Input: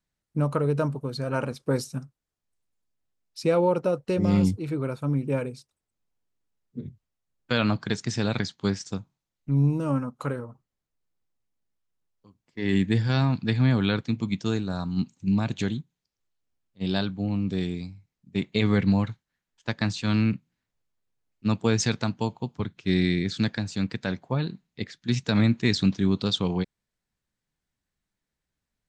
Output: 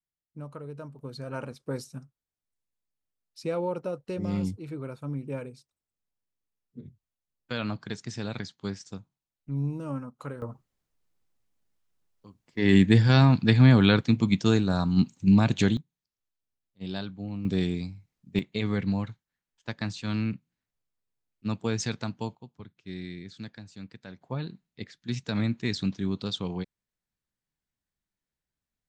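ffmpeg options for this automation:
-af "asetnsamples=n=441:p=0,asendcmd='0.99 volume volume -8dB;10.42 volume volume 4.5dB;15.77 volume volume -8dB;17.45 volume volume 1.5dB;18.39 volume volume -6dB;22.35 volume volume -15.5dB;24.21 volume volume -6.5dB',volume=0.158"

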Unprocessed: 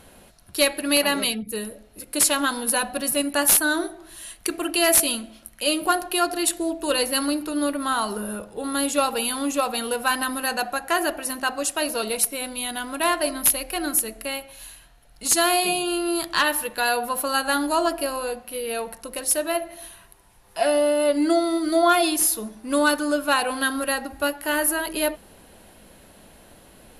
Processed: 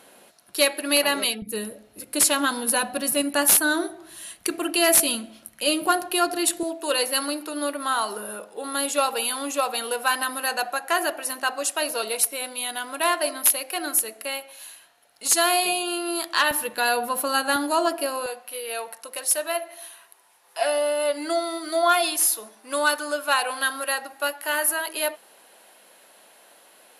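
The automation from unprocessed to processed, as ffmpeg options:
-af "asetnsamples=n=441:p=0,asendcmd='1.42 highpass f 110;6.63 highpass f 410;16.51 highpass f 130;17.56 highpass f 270;18.26 highpass f 600',highpass=310"

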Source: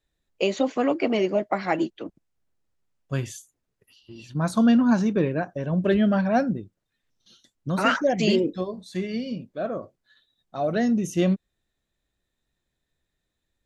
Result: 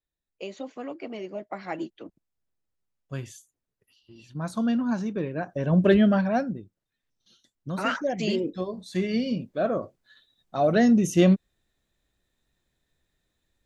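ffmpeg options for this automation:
-af "volume=4.47,afade=t=in:st=1.23:d=0.78:silence=0.473151,afade=t=in:st=5.32:d=0.45:silence=0.281838,afade=t=out:st=5.77:d=0.68:silence=0.334965,afade=t=in:st=8.39:d=0.8:silence=0.354813"

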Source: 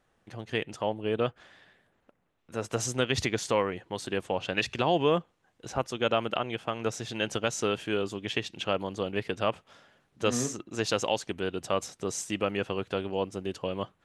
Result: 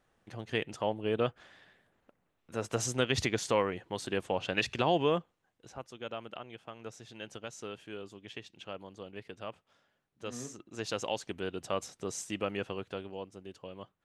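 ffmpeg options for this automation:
-af "volume=2.24,afade=t=out:st=4.88:d=0.88:silence=0.251189,afade=t=in:st=10.27:d=1.04:silence=0.354813,afade=t=out:st=12.57:d=0.71:silence=0.398107"

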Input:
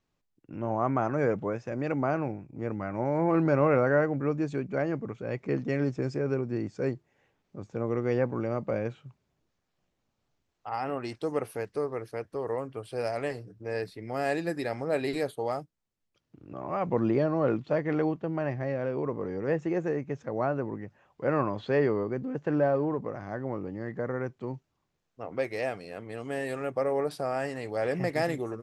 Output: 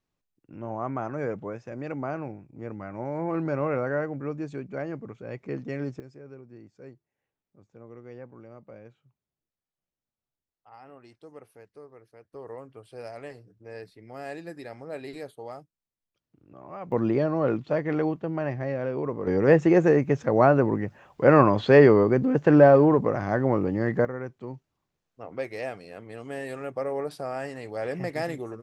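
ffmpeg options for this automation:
-af "asetnsamples=n=441:p=0,asendcmd='6 volume volume -16.5dB;12.34 volume volume -8.5dB;16.92 volume volume 1.5dB;19.27 volume volume 10.5dB;24.05 volume volume -2dB',volume=0.631"

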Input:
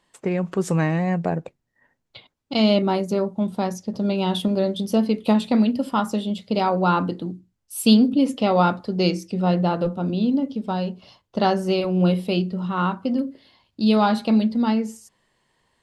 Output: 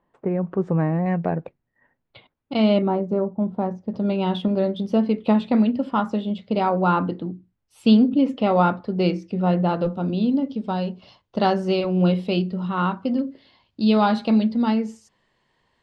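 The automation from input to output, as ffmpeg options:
-af "asetnsamples=n=441:p=0,asendcmd='1.06 lowpass f 2500;2.88 lowpass f 1100;3.88 lowpass f 2700;9.69 lowpass f 4900',lowpass=1100"

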